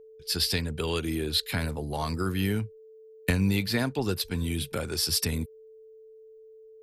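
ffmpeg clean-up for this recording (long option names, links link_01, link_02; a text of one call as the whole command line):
ffmpeg -i in.wav -af "bandreject=frequency=440:width=30" out.wav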